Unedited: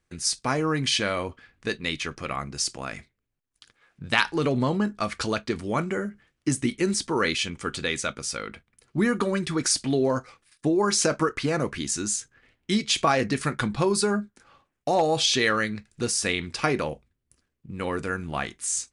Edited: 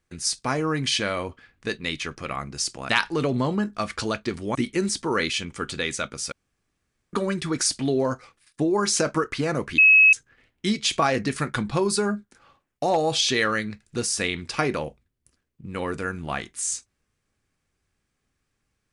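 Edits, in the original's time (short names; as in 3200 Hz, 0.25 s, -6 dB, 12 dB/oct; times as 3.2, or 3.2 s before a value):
2.89–4.11 cut
5.77–6.6 cut
8.37–9.18 room tone
11.83–12.18 bleep 2570 Hz -10.5 dBFS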